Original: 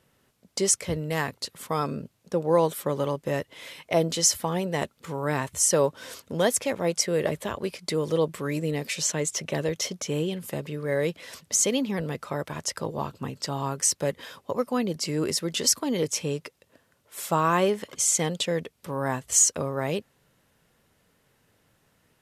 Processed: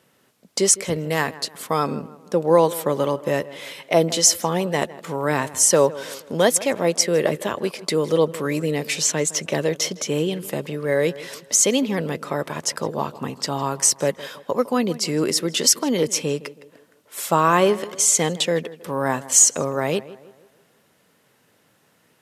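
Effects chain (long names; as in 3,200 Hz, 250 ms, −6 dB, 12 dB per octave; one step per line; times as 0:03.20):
high-pass filter 160 Hz 12 dB per octave
on a send: tape delay 159 ms, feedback 48%, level −16.5 dB, low-pass 2,000 Hz
on the sum: level +6 dB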